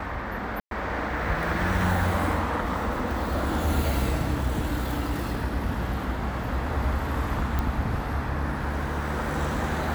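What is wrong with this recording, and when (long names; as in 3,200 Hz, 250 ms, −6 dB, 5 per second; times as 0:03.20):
0:00.60–0:00.71: drop-out 112 ms
0:07.59: click −14 dBFS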